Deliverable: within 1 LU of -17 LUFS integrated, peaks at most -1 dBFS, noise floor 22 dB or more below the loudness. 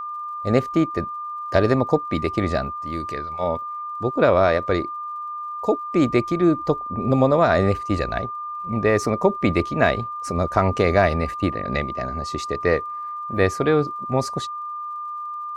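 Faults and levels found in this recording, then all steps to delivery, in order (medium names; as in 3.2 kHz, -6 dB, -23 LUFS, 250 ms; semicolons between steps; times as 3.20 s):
tick rate 60 per s; steady tone 1.2 kHz; tone level -28 dBFS; loudness -22.5 LUFS; peak level -4.0 dBFS; loudness target -17.0 LUFS
-> de-click; band-stop 1.2 kHz, Q 30; trim +5.5 dB; peak limiter -1 dBFS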